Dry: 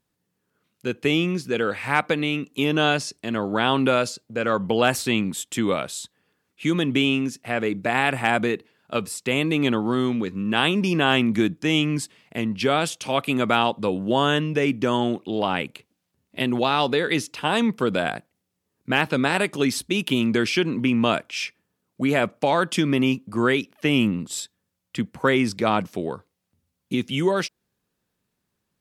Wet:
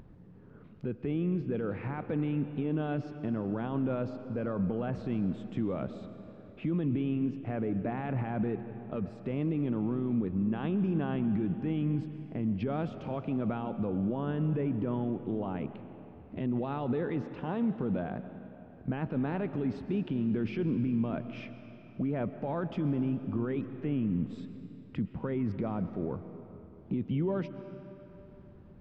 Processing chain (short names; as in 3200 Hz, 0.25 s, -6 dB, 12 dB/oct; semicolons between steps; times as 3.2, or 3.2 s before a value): tilt -3 dB/oct; upward compressor, threshold -29 dBFS; limiter -18 dBFS, peak gain reduction 14 dB; tape spacing loss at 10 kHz 39 dB; reverb RT60 3.4 s, pre-delay 85 ms, DRR 10.5 dB; gain -4.5 dB